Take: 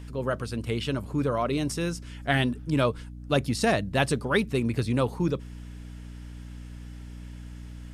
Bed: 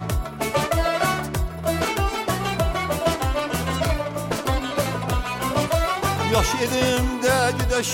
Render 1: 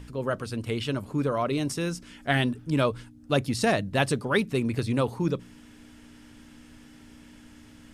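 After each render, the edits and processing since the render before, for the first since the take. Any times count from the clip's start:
hum removal 60 Hz, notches 3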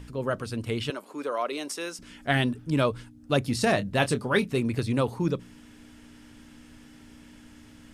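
0:00.90–0:01.99: Bessel high-pass filter 460 Hz, order 4
0:03.42–0:04.61: double-tracking delay 25 ms −11 dB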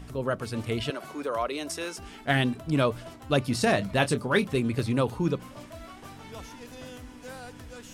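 mix in bed −23.5 dB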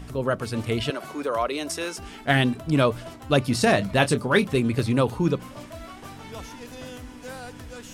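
level +4 dB

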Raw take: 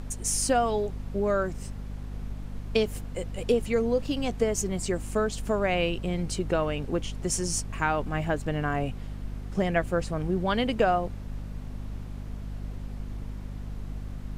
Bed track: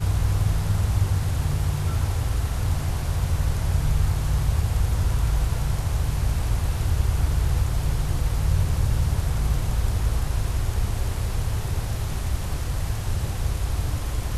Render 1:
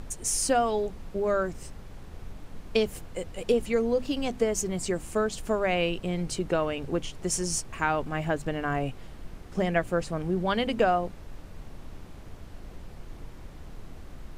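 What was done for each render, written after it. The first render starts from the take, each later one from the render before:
mains-hum notches 50/100/150/200/250 Hz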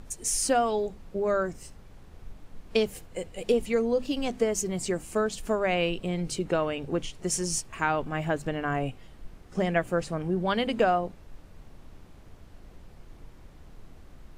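noise reduction from a noise print 6 dB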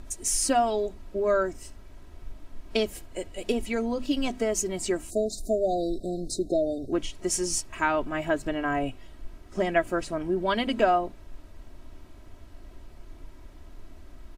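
comb filter 3.1 ms, depth 62%
0:05.10–0:06.92: time-frequency box erased 760–3,600 Hz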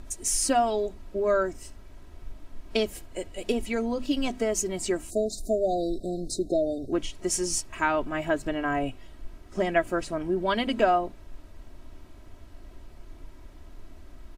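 no processing that can be heard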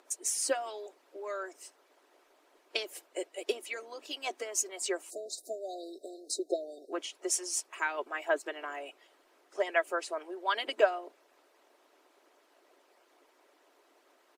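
elliptic high-pass filter 340 Hz, stop band 50 dB
harmonic and percussive parts rebalanced harmonic −15 dB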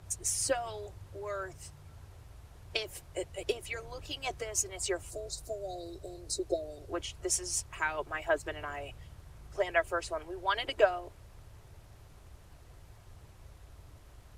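mix in bed track −28 dB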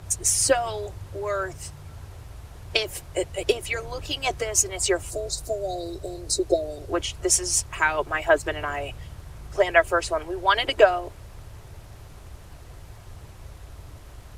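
level +10.5 dB
brickwall limiter −3 dBFS, peak gain reduction 2.5 dB

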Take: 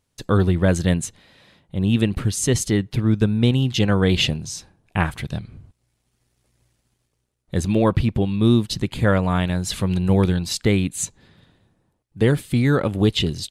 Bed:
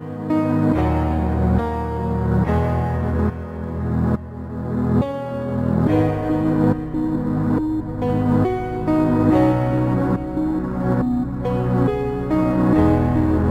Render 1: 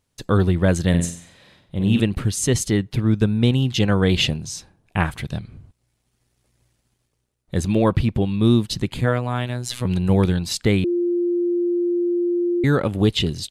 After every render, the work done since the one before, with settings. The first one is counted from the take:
0:00.89–0:02.00: flutter between parallel walls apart 8 metres, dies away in 0.48 s
0:09.01–0:09.85: phases set to zero 123 Hz
0:10.84–0:12.64: beep over 349 Hz −17.5 dBFS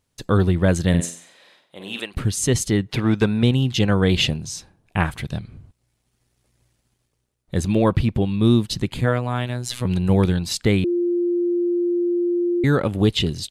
0:01.00–0:02.14: high-pass filter 280 Hz → 790 Hz
0:02.89–0:03.43: mid-hump overdrive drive 15 dB, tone 4,200 Hz, clips at −5 dBFS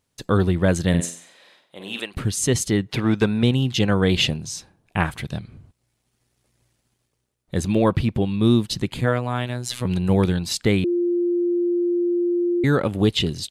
low-shelf EQ 71 Hz −7.5 dB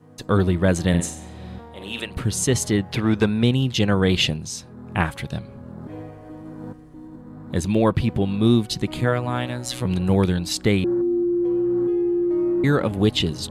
mix in bed −19 dB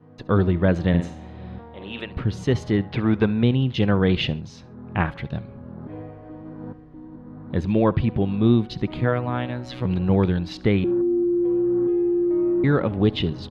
high-frequency loss of the air 290 metres
repeating echo 69 ms, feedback 28%, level −21 dB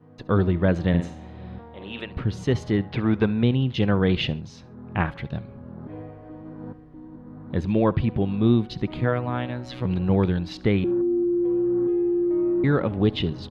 level −1.5 dB

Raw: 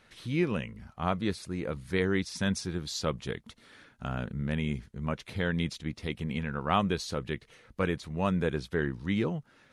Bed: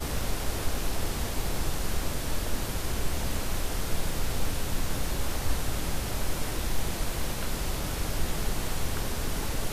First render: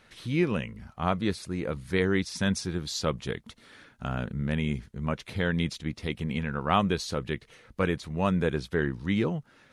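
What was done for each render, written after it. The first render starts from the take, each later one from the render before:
level +2.5 dB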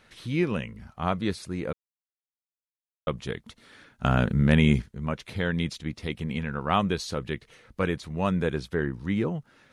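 0:01.73–0:03.07: silence
0:04.04–0:04.82: clip gain +9 dB
0:08.65–0:09.35: dynamic equaliser 4,100 Hz, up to −7 dB, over −51 dBFS, Q 0.85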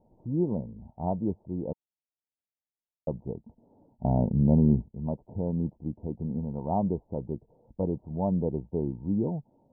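Chebyshev low-pass with heavy ripple 930 Hz, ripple 3 dB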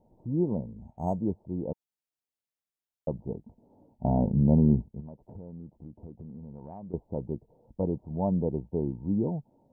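0:00.71–0:01.21: linearly interpolated sample-rate reduction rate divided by 6×
0:03.15–0:04.40: double-tracking delay 20 ms −9.5 dB
0:05.00–0:06.94: downward compressor 5 to 1, threshold −41 dBFS

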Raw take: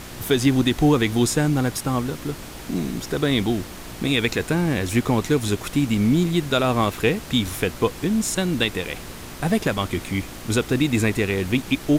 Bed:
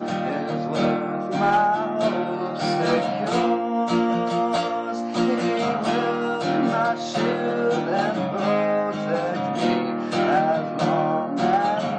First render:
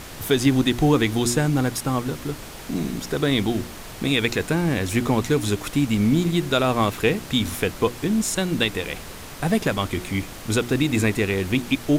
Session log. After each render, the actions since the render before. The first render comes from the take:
hum removal 60 Hz, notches 6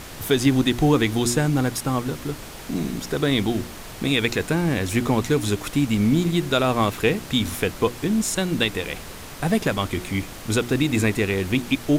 no processing that can be heard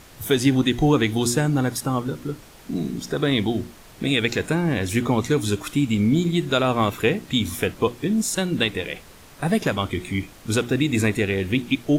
noise reduction from a noise print 9 dB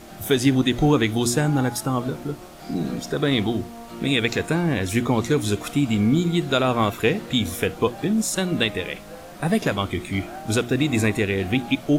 mix in bed −17 dB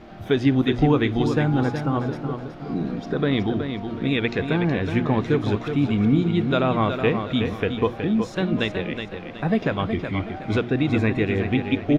high-frequency loss of the air 270 metres
repeating echo 370 ms, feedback 34%, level −7.5 dB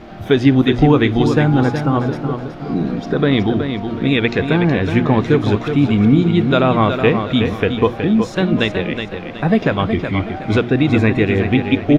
level +7 dB
brickwall limiter −1 dBFS, peak gain reduction 1 dB

